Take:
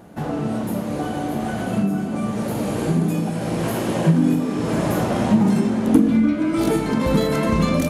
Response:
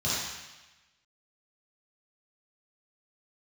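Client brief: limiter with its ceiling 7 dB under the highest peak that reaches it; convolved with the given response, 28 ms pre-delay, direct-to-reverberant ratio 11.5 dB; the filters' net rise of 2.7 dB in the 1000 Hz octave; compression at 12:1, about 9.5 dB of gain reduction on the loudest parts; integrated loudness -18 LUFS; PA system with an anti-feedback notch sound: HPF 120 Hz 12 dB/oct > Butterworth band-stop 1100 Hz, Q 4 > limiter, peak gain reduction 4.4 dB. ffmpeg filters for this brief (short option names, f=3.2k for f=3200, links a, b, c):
-filter_complex "[0:a]equalizer=f=1k:t=o:g=6,acompressor=threshold=-18dB:ratio=12,alimiter=limit=-17dB:level=0:latency=1,asplit=2[a][b];[1:a]atrim=start_sample=2205,adelay=28[c];[b][c]afir=irnorm=-1:irlink=0,volume=-22dB[d];[a][d]amix=inputs=2:normalize=0,highpass=120,asuperstop=centerf=1100:order=8:qfactor=4,volume=9.5dB,alimiter=limit=-9.5dB:level=0:latency=1"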